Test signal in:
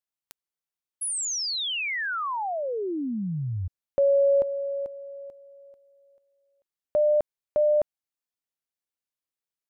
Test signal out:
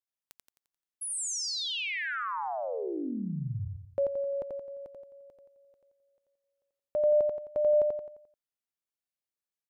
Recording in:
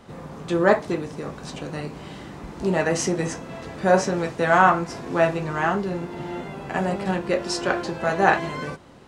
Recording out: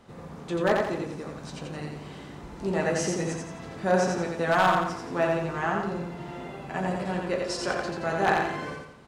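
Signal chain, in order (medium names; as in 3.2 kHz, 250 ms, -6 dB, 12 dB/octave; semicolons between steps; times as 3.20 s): wavefolder -7 dBFS; on a send: feedback delay 87 ms, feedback 43%, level -3 dB; on the sum: trim -6.5 dB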